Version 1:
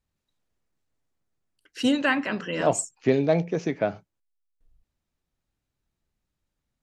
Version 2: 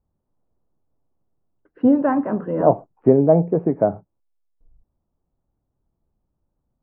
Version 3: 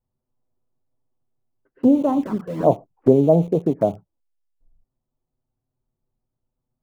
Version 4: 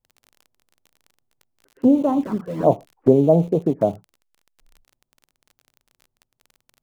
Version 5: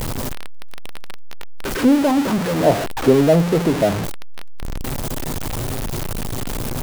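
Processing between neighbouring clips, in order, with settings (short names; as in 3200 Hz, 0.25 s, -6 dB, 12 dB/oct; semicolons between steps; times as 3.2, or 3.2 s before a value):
LPF 1000 Hz 24 dB/oct; gain +7.5 dB
in parallel at -8 dB: sample gate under -27 dBFS; on the sum: envelope flanger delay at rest 8 ms, full sweep at -12.5 dBFS; gain -2.5 dB
crackle 28/s -36 dBFS
zero-crossing step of -16 dBFS; gain -1 dB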